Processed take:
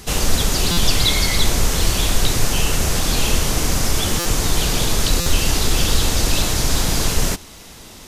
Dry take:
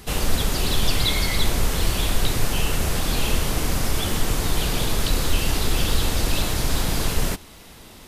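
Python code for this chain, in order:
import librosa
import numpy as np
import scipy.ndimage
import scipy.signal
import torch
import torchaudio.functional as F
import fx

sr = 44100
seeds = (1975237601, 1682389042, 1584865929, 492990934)

y = fx.peak_eq(x, sr, hz=6300.0, db=6.5, octaves=0.85)
y = fx.buffer_glitch(y, sr, at_s=(0.71, 4.19, 5.2), block=256, repeats=10)
y = y * librosa.db_to_amplitude(3.5)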